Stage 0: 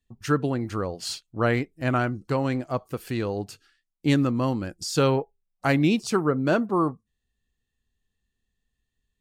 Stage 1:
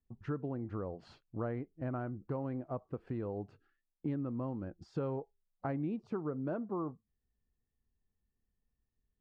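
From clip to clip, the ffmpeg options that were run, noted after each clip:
-af "lowpass=1000,acompressor=threshold=0.0224:ratio=3,volume=0.631"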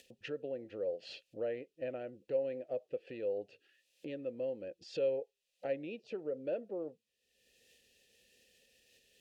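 -filter_complex "[0:a]acompressor=mode=upward:threshold=0.00891:ratio=2.5,aexciter=amount=7.9:drive=6.4:freq=2600,asplit=3[s0][s1][s2];[s0]bandpass=f=530:t=q:w=8,volume=1[s3];[s1]bandpass=f=1840:t=q:w=8,volume=0.501[s4];[s2]bandpass=f=2480:t=q:w=8,volume=0.355[s5];[s3][s4][s5]amix=inputs=3:normalize=0,volume=3.35"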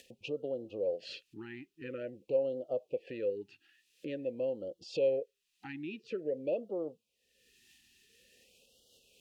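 -af "afftfilt=real='re*(1-between(b*sr/1024,530*pow(2000/530,0.5+0.5*sin(2*PI*0.48*pts/sr))/1.41,530*pow(2000/530,0.5+0.5*sin(2*PI*0.48*pts/sr))*1.41))':imag='im*(1-between(b*sr/1024,530*pow(2000/530,0.5+0.5*sin(2*PI*0.48*pts/sr))/1.41,530*pow(2000/530,0.5+0.5*sin(2*PI*0.48*pts/sr))*1.41))':win_size=1024:overlap=0.75,volume=1.5"

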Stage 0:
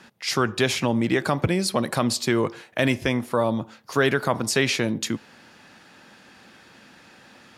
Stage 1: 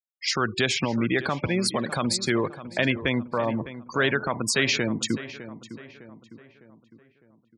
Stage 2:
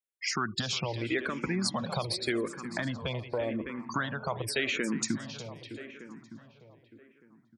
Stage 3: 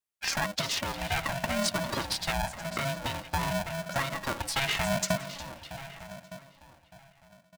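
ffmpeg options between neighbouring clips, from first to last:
-filter_complex "[0:a]afftfilt=real='re*gte(hypot(re,im),0.0398)':imag='im*gte(hypot(re,im),0.0398)':win_size=1024:overlap=0.75,acrossover=split=1300[s0][s1];[s0]alimiter=limit=0.141:level=0:latency=1:release=194[s2];[s2][s1]amix=inputs=2:normalize=0,asplit=2[s3][s4];[s4]adelay=606,lowpass=f=2400:p=1,volume=0.211,asplit=2[s5][s6];[s6]adelay=606,lowpass=f=2400:p=1,volume=0.48,asplit=2[s7][s8];[s8]adelay=606,lowpass=f=2400:p=1,volume=0.48,asplit=2[s9][s10];[s10]adelay=606,lowpass=f=2400:p=1,volume=0.48,asplit=2[s11][s12];[s12]adelay=606,lowpass=f=2400:p=1,volume=0.48[s13];[s3][s5][s7][s9][s11][s13]amix=inputs=6:normalize=0,volume=1.12"
-filter_complex "[0:a]acompressor=threshold=0.0501:ratio=6,aecho=1:1:359|718|1077:0.178|0.0551|0.0171,asplit=2[s0][s1];[s1]afreqshift=-0.86[s2];[s0][s2]amix=inputs=2:normalize=1,volume=1.19"
-af "aecho=1:1:4:0.65,aeval=exprs='val(0)*sgn(sin(2*PI*410*n/s))':c=same"

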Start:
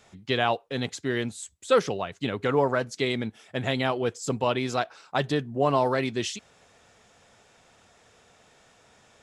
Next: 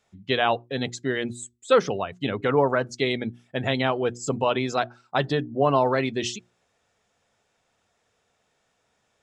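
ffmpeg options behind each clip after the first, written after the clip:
-af "afftdn=nr=15:nf=-41,bandreject=f=60:t=h:w=6,bandreject=f=120:t=h:w=6,bandreject=f=180:t=h:w=6,bandreject=f=240:t=h:w=6,bandreject=f=300:t=h:w=6,bandreject=f=360:t=h:w=6,volume=1.33"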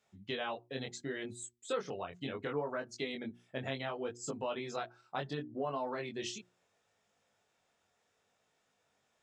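-af "acompressor=threshold=0.0251:ratio=2.5,flanger=delay=19:depth=3.8:speed=0.7,lowshelf=f=75:g=-10.5,volume=0.708"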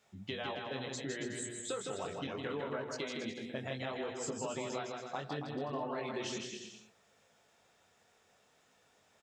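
-filter_complex "[0:a]acompressor=threshold=0.00501:ratio=3,asplit=2[s0][s1];[s1]aecho=0:1:160|280|370|437.5|488.1:0.631|0.398|0.251|0.158|0.1[s2];[s0][s2]amix=inputs=2:normalize=0,volume=2"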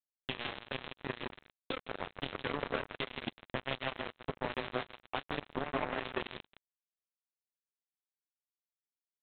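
-af "flanger=delay=8.7:depth=1.9:regen=-76:speed=0.27:shape=sinusoidal,aresample=8000,acrusher=bits=5:mix=0:aa=0.5,aresample=44100,volume=2.82"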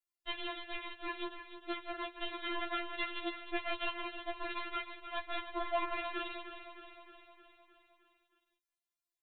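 -filter_complex "[0:a]asplit=2[s0][s1];[s1]aecho=0:1:309|618|927|1236|1545|1854|2163:0.282|0.169|0.101|0.0609|0.0365|0.0219|0.0131[s2];[s0][s2]amix=inputs=2:normalize=0,afftfilt=real='re*4*eq(mod(b,16),0)':imag='im*4*eq(mod(b,16),0)':win_size=2048:overlap=0.75,volume=1.41"

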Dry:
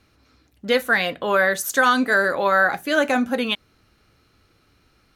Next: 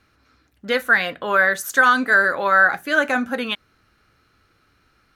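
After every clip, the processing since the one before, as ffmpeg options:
-af "equalizer=f=1500:w=1.5:g=7.5,volume=0.708"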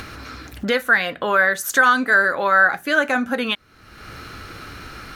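-af "acompressor=mode=upward:threshold=0.158:ratio=2.5"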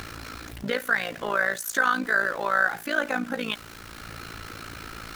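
-af "aeval=exprs='val(0)+0.5*0.0316*sgn(val(0))':c=same,tremolo=f=56:d=0.824,volume=0.562"

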